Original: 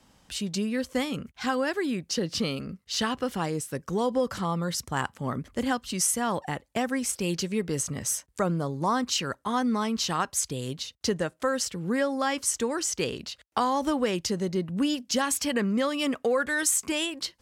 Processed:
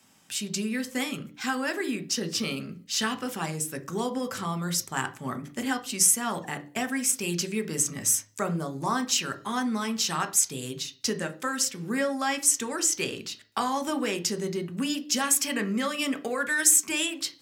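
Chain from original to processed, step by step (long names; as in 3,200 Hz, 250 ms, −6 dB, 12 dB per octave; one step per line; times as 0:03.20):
high-shelf EQ 11,000 Hz +11.5 dB
convolution reverb RT60 0.40 s, pre-delay 3 ms, DRR 7.5 dB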